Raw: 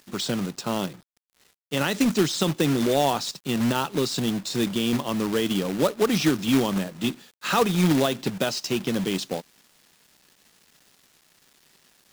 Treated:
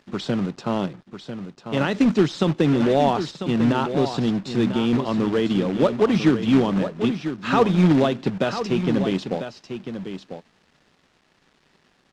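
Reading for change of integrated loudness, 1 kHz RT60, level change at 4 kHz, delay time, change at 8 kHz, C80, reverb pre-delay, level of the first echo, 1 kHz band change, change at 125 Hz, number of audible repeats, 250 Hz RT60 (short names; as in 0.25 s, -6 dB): +3.0 dB, none, -3.5 dB, 0.996 s, under -10 dB, none, none, -9.5 dB, +3.0 dB, +4.5 dB, 1, none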